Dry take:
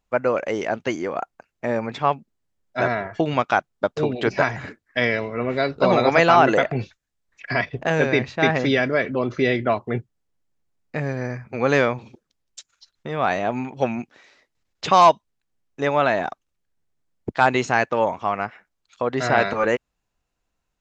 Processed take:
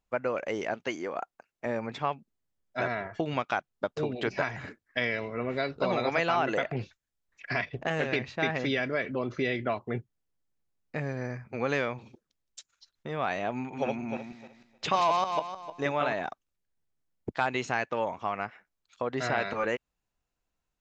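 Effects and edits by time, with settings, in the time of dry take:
0.74–1.66 s: bass shelf 160 Hz -10.5 dB
6.75–8.16 s: loudspeaker Doppler distortion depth 0.2 ms
13.56–16.13 s: backward echo that repeats 153 ms, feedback 40%, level -1.5 dB
whole clip: dynamic bell 2.7 kHz, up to +4 dB, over -33 dBFS, Q 1.1; compression 2:1, threshold -21 dBFS; trim -6.5 dB

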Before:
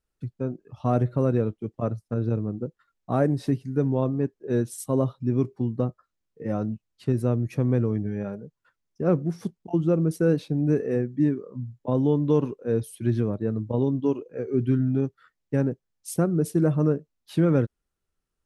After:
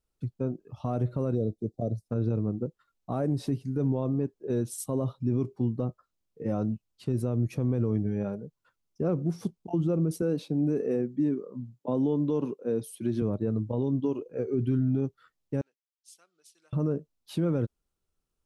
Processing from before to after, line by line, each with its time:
1.35–2.06 s: time-frequency box 760–3500 Hz -22 dB
10.22–13.22 s: Chebyshev high-pass 200 Hz
15.61–16.73 s: ladder band-pass 4.2 kHz, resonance 20%
whole clip: peaking EQ 1.8 kHz -7 dB 0.66 oct; peak limiter -19 dBFS

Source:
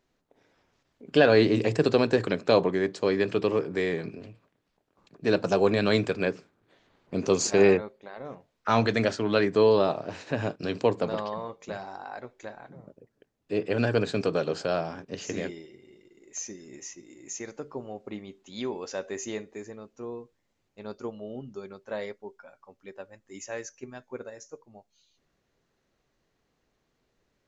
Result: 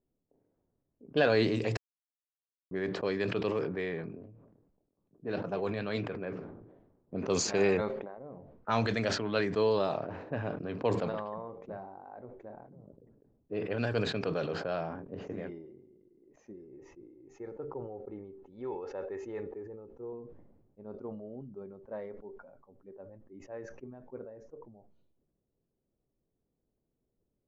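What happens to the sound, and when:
1.77–2.71 s: mute
4.26–6.33 s: flange 1.7 Hz, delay 2.4 ms, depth 8.2 ms, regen +81%
16.54–20.13 s: comb 2.3 ms, depth 52%
whole clip: level-controlled noise filter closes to 450 Hz, open at -18 dBFS; dynamic bell 320 Hz, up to -3 dB, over -34 dBFS, Q 1.4; decay stretcher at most 49 dB/s; trim -6 dB

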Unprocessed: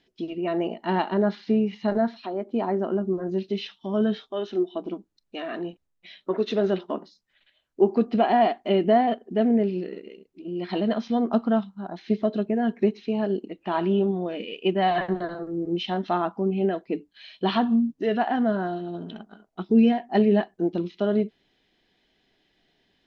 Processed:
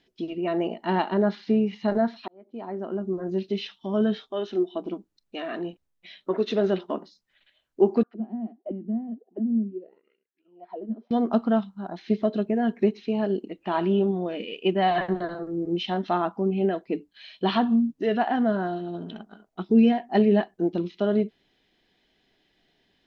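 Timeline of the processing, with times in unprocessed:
2.28–3.41 s: fade in
8.03–11.11 s: auto-wah 220–1900 Hz, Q 8.7, down, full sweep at -19 dBFS

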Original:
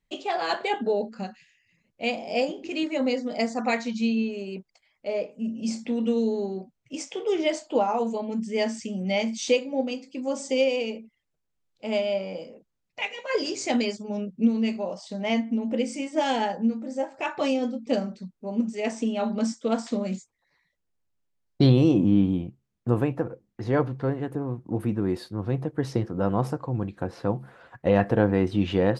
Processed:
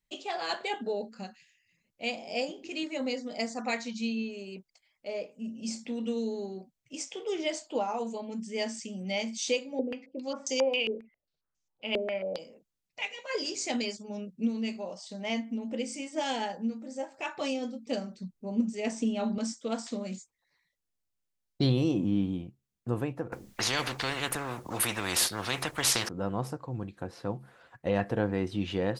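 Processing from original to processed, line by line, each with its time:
9.79–12.39 s: step-sequenced low-pass 7.4 Hz 410–6300 Hz
18.18–19.38 s: bass shelf 310 Hz +9 dB
23.32–26.09 s: spectrum-flattening compressor 4:1
whole clip: treble shelf 2.9 kHz +9 dB; trim -8 dB

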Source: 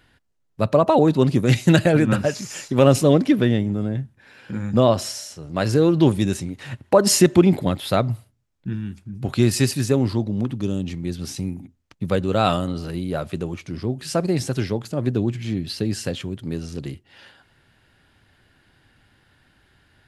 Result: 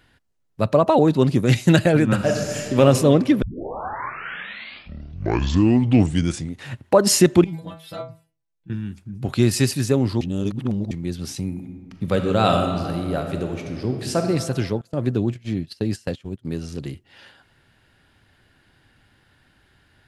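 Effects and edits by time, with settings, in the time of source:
2.14–2.80 s: reverb throw, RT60 1.9 s, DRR 1 dB
3.42 s: tape start 3.25 s
7.44–8.70 s: inharmonic resonator 160 Hz, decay 0.31 s, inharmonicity 0.002
10.21–10.91 s: reverse
11.46–14.19 s: reverb throw, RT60 2 s, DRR 4 dB
14.81–16.45 s: gate -29 dBFS, range -20 dB

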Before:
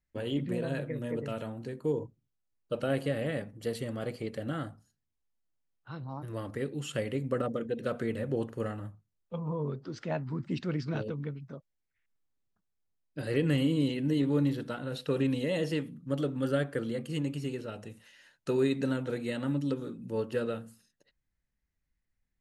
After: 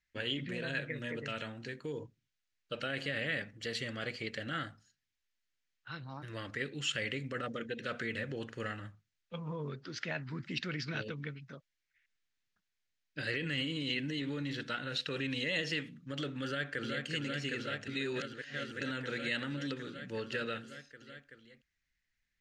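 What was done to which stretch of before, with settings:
16.45–17.05 s: echo throw 380 ms, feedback 85%, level -6 dB
17.88–18.81 s: reverse
whole clip: treble shelf 6.9 kHz -10.5 dB; peak limiter -25 dBFS; high-order bell 3.3 kHz +16 dB 2.7 oct; trim -6 dB

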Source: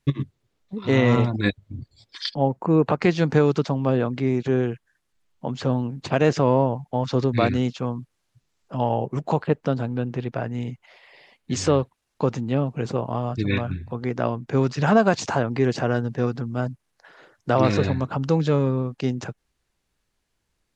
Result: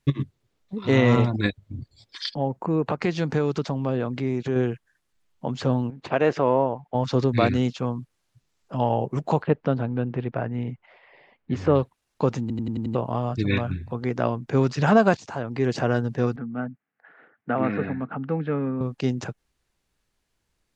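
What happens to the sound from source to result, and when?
1.46–4.56 s: compression 1.5:1, threshold -27 dBFS
5.90–6.95 s: tone controls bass -10 dB, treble -14 dB
9.42–11.74 s: low-pass 3.3 kHz -> 1.7 kHz
12.41 s: stutter in place 0.09 s, 6 plays
15.17–15.84 s: fade in, from -18.5 dB
16.36–18.81 s: cabinet simulation 220–2100 Hz, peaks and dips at 240 Hz +4 dB, 360 Hz -9 dB, 570 Hz -9 dB, 990 Hz -10 dB

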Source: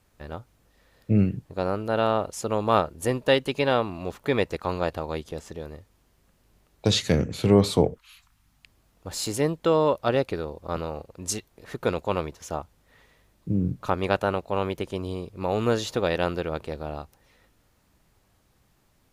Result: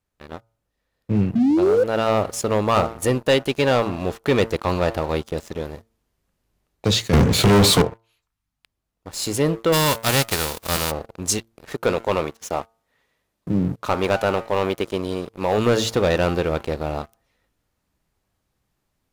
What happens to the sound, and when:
1.35–1.84 s: painted sound rise 220–530 Hz -16 dBFS
7.13–7.82 s: waveshaping leveller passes 5
9.72–10.90 s: formants flattened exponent 0.3
11.73–15.58 s: bass shelf 120 Hz -11.5 dB
whole clip: de-hum 113.1 Hz, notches 13; gain riding within 4 dB 0.5 s; waveshaping leveller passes 3; trim -7 dB

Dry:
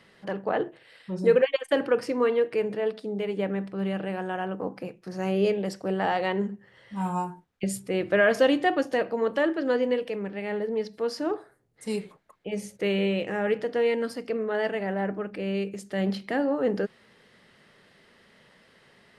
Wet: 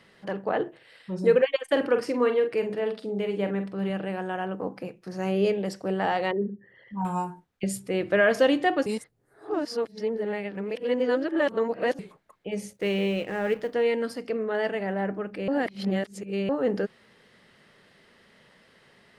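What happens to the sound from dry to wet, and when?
1.68–3.90 s: doubling 45 ms -8.5 dB
6.31–7.05 s: resonances exaggerated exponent 2
8.86–11.99 s: reverse
12.73–13.74 s: companding laws mixed up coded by A
15.48–16.49 s: reverse

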